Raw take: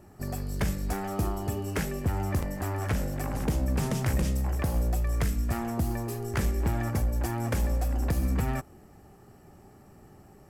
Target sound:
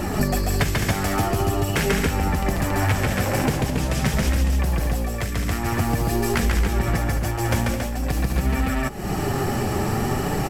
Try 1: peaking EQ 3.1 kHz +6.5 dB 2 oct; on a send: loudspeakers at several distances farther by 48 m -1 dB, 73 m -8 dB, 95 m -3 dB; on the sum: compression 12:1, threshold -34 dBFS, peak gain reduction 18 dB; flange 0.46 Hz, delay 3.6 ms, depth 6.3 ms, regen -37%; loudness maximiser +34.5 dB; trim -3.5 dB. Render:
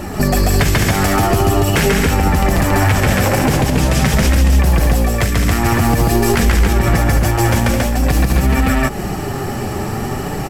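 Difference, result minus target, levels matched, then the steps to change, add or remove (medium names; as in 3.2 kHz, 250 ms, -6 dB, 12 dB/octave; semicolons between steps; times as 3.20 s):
compression: peak gain reduction -10.5 dB
change: compression 12:1, threshold -45.5 dBFS, peak gain reduction 28.5 dB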